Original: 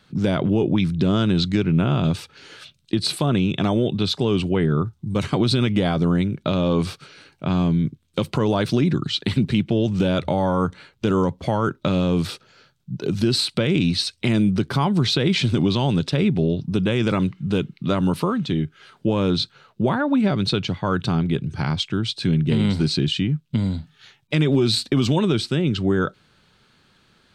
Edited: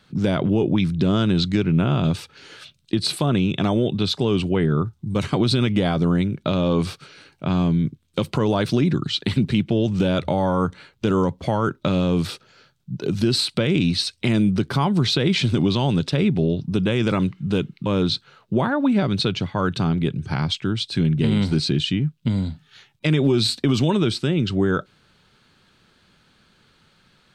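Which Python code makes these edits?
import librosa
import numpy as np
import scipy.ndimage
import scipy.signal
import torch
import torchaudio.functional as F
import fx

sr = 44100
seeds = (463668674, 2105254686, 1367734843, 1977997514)

y = fx.edit(x, sr, fx.cut(start_s=17.86, length_s=1.28), tone=tone)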